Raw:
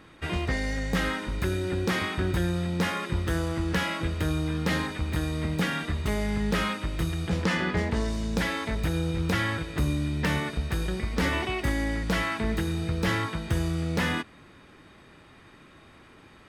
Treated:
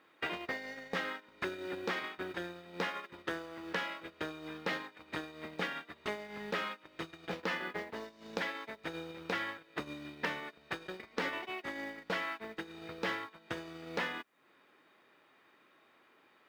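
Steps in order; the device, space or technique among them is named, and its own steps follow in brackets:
baby monitor (band-pass filter 390–4,100 Hz; downward compressor 6 to 1, threshold −46 dBFS, peak gain reduction 18.5 dB; white noise bed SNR 28 dB; noise gate −46 dBFS, range −23 dB)
level +12.5 dB

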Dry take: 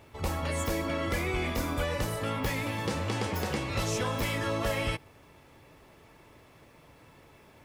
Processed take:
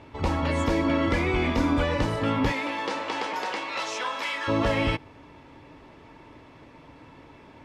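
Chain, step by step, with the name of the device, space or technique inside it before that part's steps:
0:02.51–0:04.47: high-pass filter 430 Hz → 1,000 Hz 12 dB per octave
inside a cardboard box (low-pass filter 4,500 Hz 12 dB per octave; hollow resonant body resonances 280/930 Hz, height 8 dB)
level +5 dB

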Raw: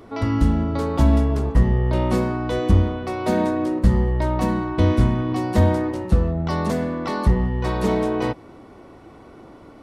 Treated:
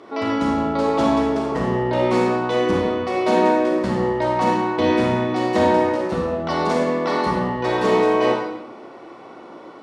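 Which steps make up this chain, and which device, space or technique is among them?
supermarket ceiling speaker (band-pass filter 320–6,000 Hz; convolution reverb RT60 0.95 s, pre-delay 28 ms, DRR −1.5 dB)
level +3 dB

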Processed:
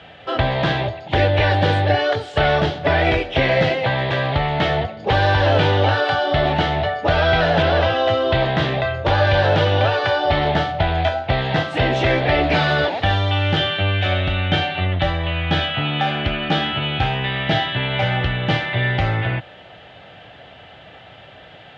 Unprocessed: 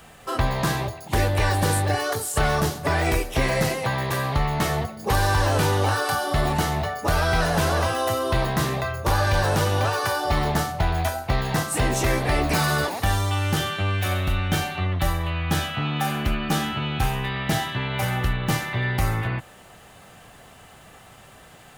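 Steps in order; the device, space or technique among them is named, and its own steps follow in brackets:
guitar cabinet (loudspeaker in its box 83–3,600 Hz, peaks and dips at 150 Hz −3 dB, 220 Hz −7 dB, 390 Hz −3 dB, 610 Hz +4 dB, 1,100 Hz −10 dB, 3,300 Hz +6 dB)
0:07.62–0:08.16: low-pass filter 4,900 Hz → 12,000 Hz 24 dB per octave
level +6.5 dB

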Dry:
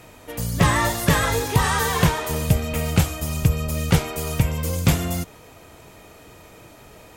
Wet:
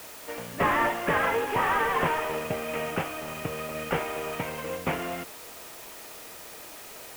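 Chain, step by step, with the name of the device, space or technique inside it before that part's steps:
army field radio (band-pass filter 380–3,300 Hz; variable-slope delta modulation 16 kbit/s; white noise bed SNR 15 dB)

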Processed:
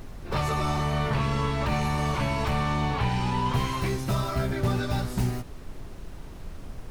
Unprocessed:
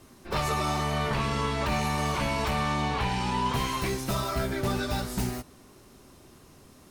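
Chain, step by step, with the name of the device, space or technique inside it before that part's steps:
car interior (parametric band 110 Hz +8 dB 0.84 octaves; high-shelf EQ 4,500 Hz −5.5 dB; brown noise bed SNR 10 dB)

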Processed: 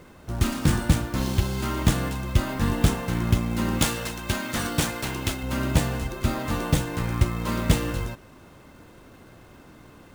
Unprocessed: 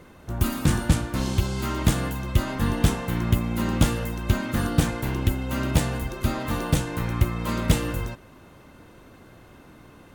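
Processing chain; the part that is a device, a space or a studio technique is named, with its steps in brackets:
0:03.79–0:05.43: spectral tilt +2 dB per octave
early companding sampler (sample-rate reduction 17,000 Hz; log-companded quantiser 6 bits)

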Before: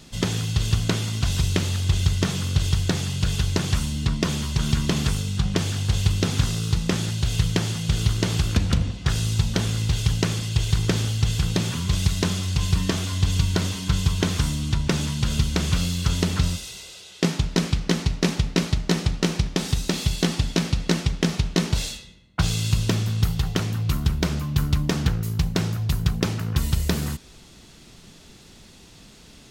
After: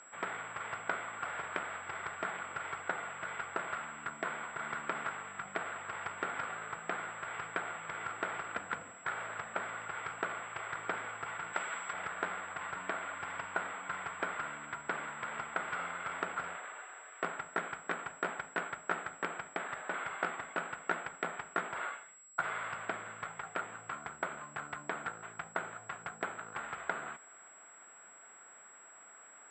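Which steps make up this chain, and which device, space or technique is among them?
toy sound module (linearly interpolated sample-rate reduction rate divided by 8×; switching amplifier with a slow clock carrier 7,700 Hz; loudspeaker in its box 670–4,500 Hz, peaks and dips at 680 Hz +4 dB, 1,400 Hz +9 dB, 2,800 Hz −5 dB)
0:11.53–0:11.93: spectral tilt +2.5 dB per octave
level −7 dB

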